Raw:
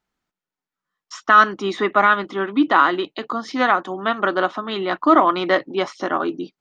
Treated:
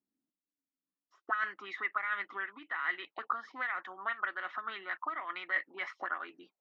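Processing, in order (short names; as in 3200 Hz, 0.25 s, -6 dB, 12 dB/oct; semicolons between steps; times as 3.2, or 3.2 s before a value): reverse; compressor 6:1, threshold -22 dBFS, peak gain reduction 14 dB; reverse; auto-wah 270–2000 Hz, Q 5.8, up, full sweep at -23 dBFS; gain +2.5 dB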